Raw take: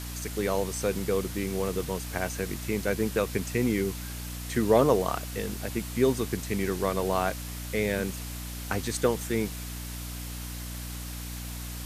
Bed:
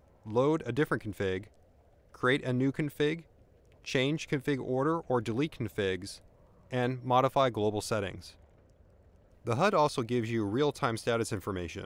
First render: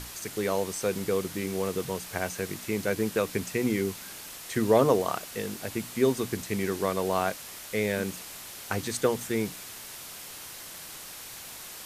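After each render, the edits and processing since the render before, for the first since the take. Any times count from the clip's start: hum notches 60/120/180/240/300 Hz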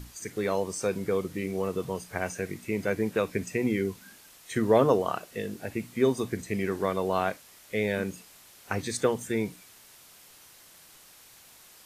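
noise print and reduce 11 dB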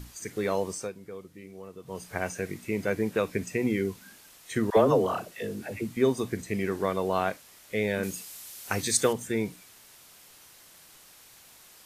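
0.72–2.05 s: dip -14 dB, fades 0.21 s; 4.70–5.97 s: phase dispersion lows, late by 70 ms, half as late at 600 Hz; 8.03–9.13 s: treble shelf 3.5 kHz +12 dB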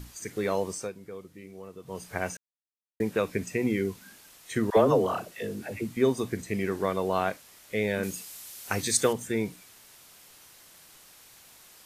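2.37–3.00 s: mute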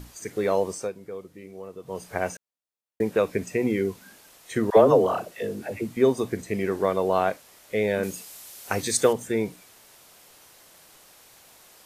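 peaking EQ 580 Hz +6 dB 1.7 oct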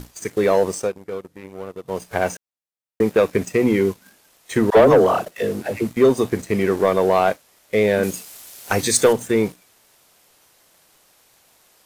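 waveshaping leveller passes 2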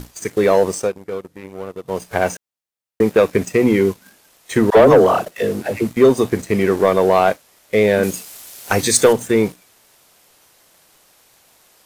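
trim +3 dB; peak limiter -3 dBFS, peak gain reduction 1.5 dB

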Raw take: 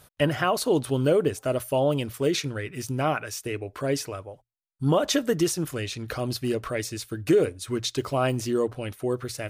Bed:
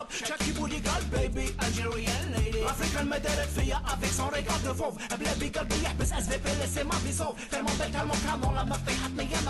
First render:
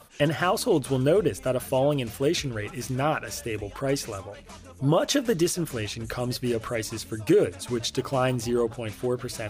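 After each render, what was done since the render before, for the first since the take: add bed -15.5 dB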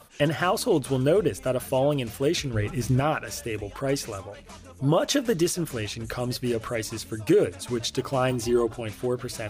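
2.53–3.00 s: bass shelf 330 Hz +9.5 dB; 8.31–8.81 s: comb 2.9 ms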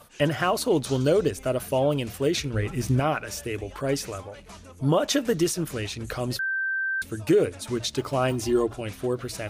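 0.83–1.31 s: high-order bell 5.2 kHz +9 dB 1.2 oct; 6.39–7.02 s: bleep 1.56 kHz -24 dBFS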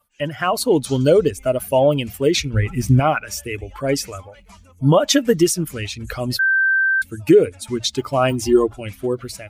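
expander on every frequency bin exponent 1.5; level rider gain up to 11 dB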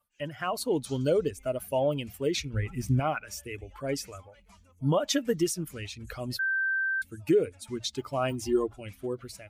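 trim -11.5 dB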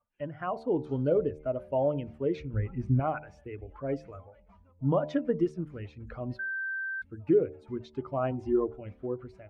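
low-pass 1.2 kHz 12 dB/octave; de-hum 75.45 Hz, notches 13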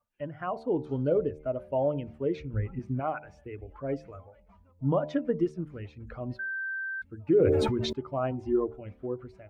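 2.79–3.24 s: high-pass 280 Hz 6 dB/octave; 7.34–7.93 s: decay stretcher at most 23 dB/s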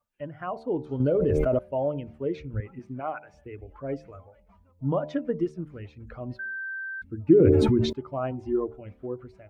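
1.00–1.59 s: level flattener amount 100%; 2.60–3.34 s: high-pass 300 Hz 6 dB/octave; 6.45–7.90 s: resonant low shelf 420 Hz +7 dB, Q 1.5

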